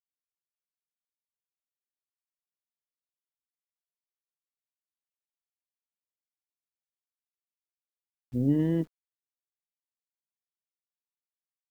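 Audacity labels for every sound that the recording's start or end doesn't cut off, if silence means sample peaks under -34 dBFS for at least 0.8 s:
8.340000	8.830000	sound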